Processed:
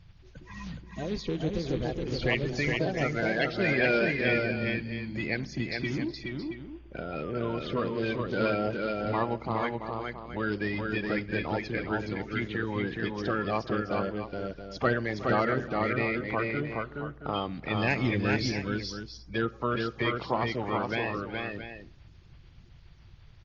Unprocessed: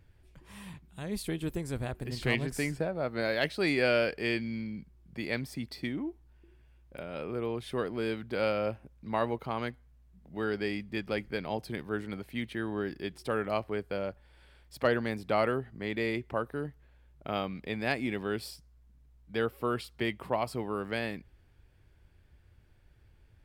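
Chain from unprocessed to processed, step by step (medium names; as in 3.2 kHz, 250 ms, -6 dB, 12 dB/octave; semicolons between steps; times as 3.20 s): coarse spectral quantiser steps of 30 dB; in parallel at +1 dB: compression 12:1, threshold -40 dBFS, peak gain reduction 18.5 dB; 17.74–18.50 s: on the sum: tone controls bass +7 dB, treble +11 dB; multi-tap echo 367/420/673 ms -18/-3.5/-11 dB; on a send at -18 dB: reverberation RT60 0.90 s, pre-delay 6 ms; on the sum: AC-3 32 kbps 48 kHz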